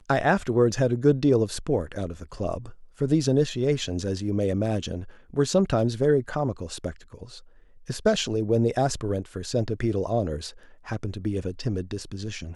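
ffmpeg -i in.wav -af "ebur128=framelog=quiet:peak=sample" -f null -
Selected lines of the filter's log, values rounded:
Integrated loudness:
  I:         -25.8 LUFS
  Threshold: -36.3 LUFS
Loudness range:
  LRA:         3.6 LU
  Threshold: -46.5 LUFS
  LRA low:   -28.3 LUFS
  LRA high:  -24.7 LUFS
Sample peak:
  Peak:       -8.2 dBFS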